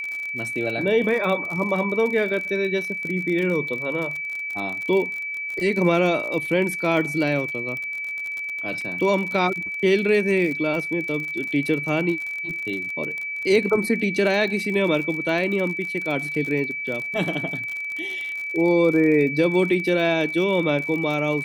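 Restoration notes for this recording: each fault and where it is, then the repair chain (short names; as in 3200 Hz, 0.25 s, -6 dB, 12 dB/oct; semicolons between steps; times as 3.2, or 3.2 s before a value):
crackle 46/s -28 dBFS
tone 2300 Hz -27 dBFS
8.81 gap 3.6 ms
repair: de-click; notch 2300 Hz, Q 30; interpolate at 8.81, 3.6 ms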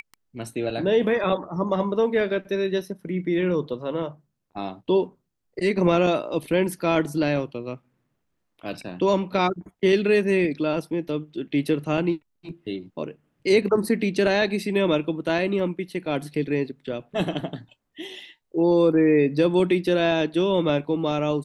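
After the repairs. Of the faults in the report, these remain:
none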